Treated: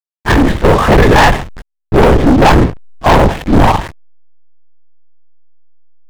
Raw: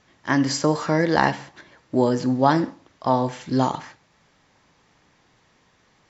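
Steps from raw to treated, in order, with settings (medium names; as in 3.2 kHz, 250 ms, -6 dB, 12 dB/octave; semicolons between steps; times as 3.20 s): gate with hold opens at -47 dBFS; LPC vocoder at 8 kHz whisper; band-stop 1.4 kHz, Q 12; waveshaping leveller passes 5; level rider gain up to 5 dB; hysteresis with a dead band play -18.5 dBFS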